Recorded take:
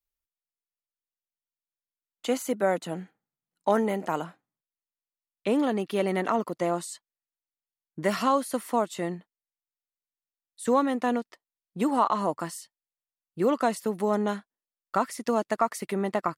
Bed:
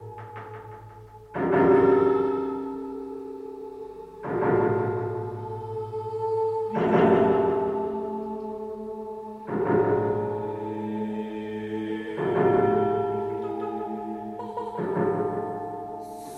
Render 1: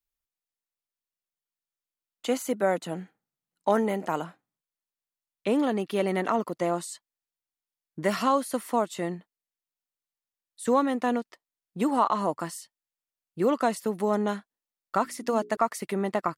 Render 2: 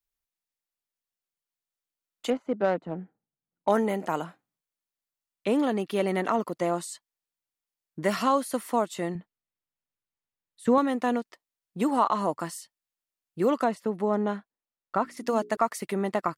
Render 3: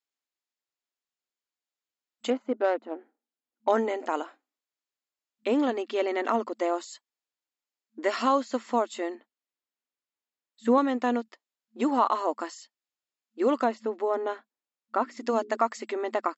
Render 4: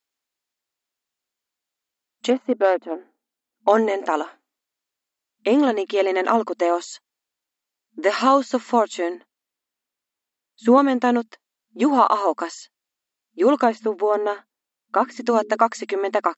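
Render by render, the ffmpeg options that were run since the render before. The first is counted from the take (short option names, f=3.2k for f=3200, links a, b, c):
-filter_complex "[0:a]asettb=1/sr,asplit=3[a][b][c];[a]atrim=end=15.034[d];[b]atrim=start=15.03:end=15.57,asetpts=PTS-STARTPTS,afade=t=in:d=0.004:c=qsin,afade=t=out:st=0.536:d=0.004:c=qsin,bandreject=f=60:t=h:w=6,bandreject=f=120:t=h:w=6,bandreject=f=180:t=h:w=6,bandreject=f=240:t=h:w=6,bandreject=f=300:t=h:w=6,bandreject=f=360:t=h:w=6,bandreject=f=420:t=h:w=6[e];[c]atrim=start=15.566[f];[d][e]acrossfade=d=0.004:c1=hsin:c2=qsin[g];[g][f]acrossfade=d=0.004:c1=qsin:c2=hsin"
-filter_complex "[0:a]asettb=1/sr,asplit=3[a][b][c];[a]atrim=end=2.304[d];[b]atrim=start=2.3:end=3.68,asetpts=PTS-STARTPTS,afade=t=in:d=0.004:c=qsin,afade=t=out:st=1.376:d=0.004:c=qsin,adynamicsmooth=sensitivity=1:basefreq=970[e];[c]atrim=start=3.676[f];[d][e]acrossfade=d=0.004:c1=hsin:c2=qsin[g];[g][f]acrossfade=d=0.004:c1=qsin:c2=hsin,asettb=1/sr,asplit=3[h][i][j];[h]atrim=end=9.154[k];[i]atrim=start=9.15:end=10.78,asetpts=PTS-STARTPTS,afade=t=in:d=0.004:c=qsin,afade=t=out:st=1.626:d=0.004:c=qsin,bass=f=250:g=8,treble=f=4k:g=-9[l];[j]atrim=start=10.776[m];[k][l]acrossfade=d=0.004:c1=hsin:c2=qsin[n];[n][m]acrossfade=d=0.004:c1=qsin:c2=hsin,asettb=1/sr,asplit=3[o][p][q];[o]atrim=end=13.644[r];[p]atrim=start=13.64:end=15.17,asetpts=PTS-STARTPTS,afade=t=in:d=0.004:c=qsin,afade=t=out:st=1.526:d=0.004:c=qsin,lowpass=f=1.8k:p=1[s];[q]atrim=start=15.166[t];[r][s]acrossfade=d=0.004:c1=hsin:c2=qsin[u];[u][t]acrossfade=d=0.004:c1=qsin:c2=hsin"
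-af "bandreject=f=5.9k:w=13,afftfilt=real='re*between(b*sr/4096,220,7700)':imag='im*between(b*sr/4096,220,7700)':win_size=4096:overlap=0.75"
-af "volume=7.5dB"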